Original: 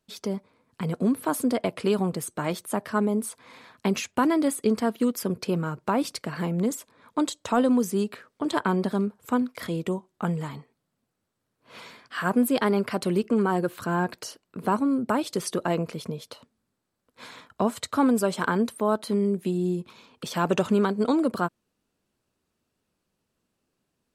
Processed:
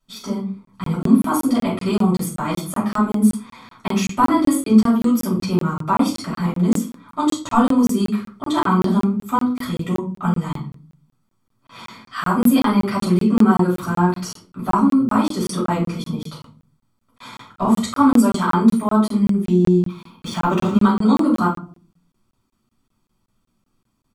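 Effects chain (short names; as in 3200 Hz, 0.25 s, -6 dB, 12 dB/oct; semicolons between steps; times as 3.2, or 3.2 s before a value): notch 2300 Hz, Q 14; comb 0.9 ms, depth 58%; shoebox room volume 260 m³, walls furnished, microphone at 6.3 m; crackling interface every 0.19 s, samples 1024, zero, from 0.65; 19.45–20.82 decimation joined by straight lines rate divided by 3×; gain -5 dB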